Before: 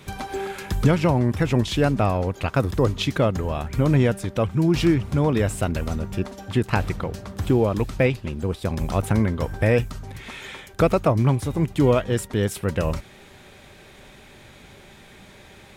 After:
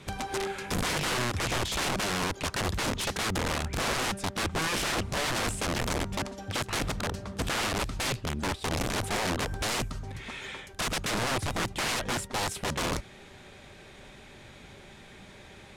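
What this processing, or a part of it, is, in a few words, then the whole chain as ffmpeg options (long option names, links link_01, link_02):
overflowing digital effects unit: -af "aeval=exprs='(mod(11.9*val(0)+1,2)-1)/11.9':channel_layout=same,lowpass=10000,volume=-2.5dB"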